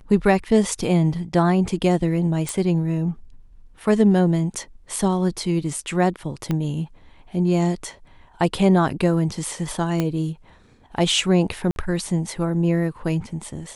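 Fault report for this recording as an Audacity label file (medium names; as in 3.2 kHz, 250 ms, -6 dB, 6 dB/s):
2.490000	2.490000	pop -11 dBFS
6.510000	6.510000	pop -12 dBFS
10.000000	10.000000	pop -9 dBFS
11.710000	11.760000	dropout 51 ms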